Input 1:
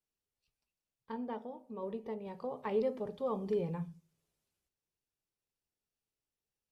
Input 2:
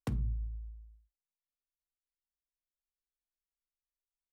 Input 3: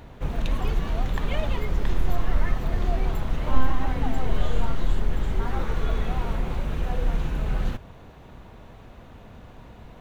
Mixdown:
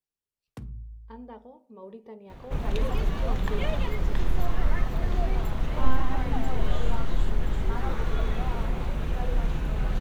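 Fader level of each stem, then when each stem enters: −3.5, −5.5, −1.5 decibels; 0.00, 0.50, 2.30 seconds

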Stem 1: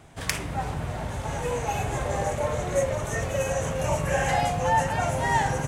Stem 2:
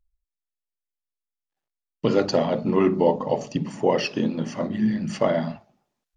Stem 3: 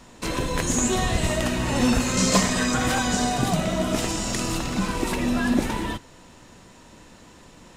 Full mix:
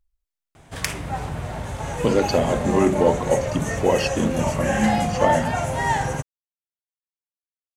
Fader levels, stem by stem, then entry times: +1.5 dB, +1.0 dB, muted; 0.55 s, 0.00 s, muted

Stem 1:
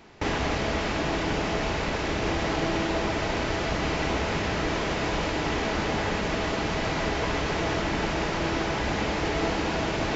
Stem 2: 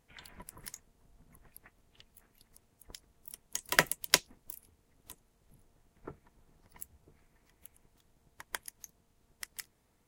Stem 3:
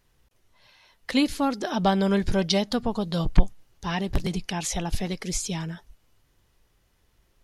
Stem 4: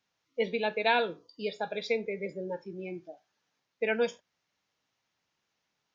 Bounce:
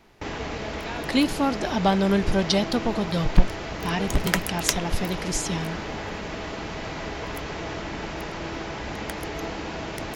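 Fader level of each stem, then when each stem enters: −5.5, +0.5, +1.0, −11.5 decibels; 0.00, 0.55, 0.00, 0.00 seconds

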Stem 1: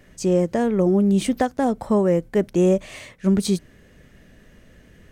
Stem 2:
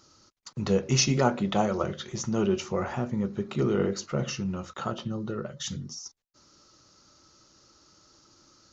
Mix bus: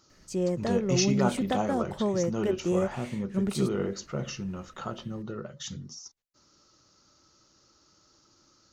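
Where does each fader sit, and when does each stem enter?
−9.0, −4.0 decibels; 0.10, 0.00 seconds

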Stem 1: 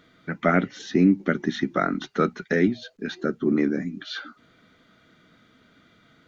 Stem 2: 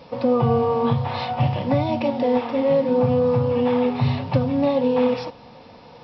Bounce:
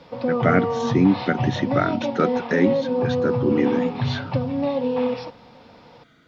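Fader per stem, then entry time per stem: +1.0, −3.5 decibels; 0.00, 0.00 seconds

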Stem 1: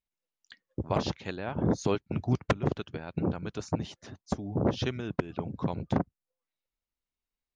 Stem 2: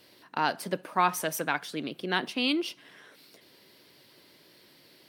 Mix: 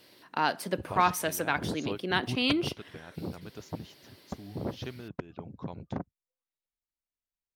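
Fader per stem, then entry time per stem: −8.0, 0.0 decibels; 0.00, 0.00 seconds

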